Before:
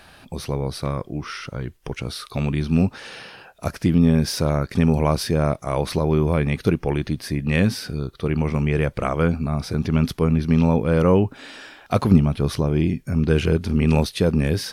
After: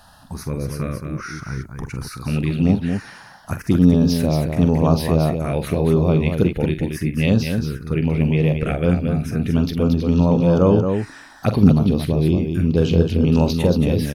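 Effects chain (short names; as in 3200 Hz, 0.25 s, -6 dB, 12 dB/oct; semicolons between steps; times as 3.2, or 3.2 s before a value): envelope phaser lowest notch 360 Hz, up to 2000 Hz, full sweep at -14 dBFS; on a send: loudspeakers at several distances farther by 16 m -10 dB, 81 m -6 dB; on the sum: speed mistake 24 fps film run at 25 fps; gain +2 dB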